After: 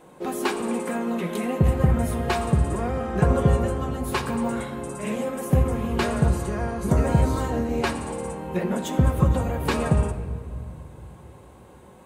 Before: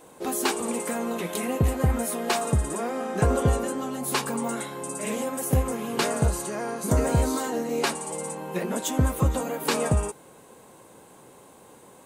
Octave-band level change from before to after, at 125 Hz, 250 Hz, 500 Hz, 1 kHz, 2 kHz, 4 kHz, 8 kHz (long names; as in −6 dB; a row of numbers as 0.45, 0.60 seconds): +4.5, +3.5, +1.0, +1.0, +0.5, −3.0, −8.0 decibels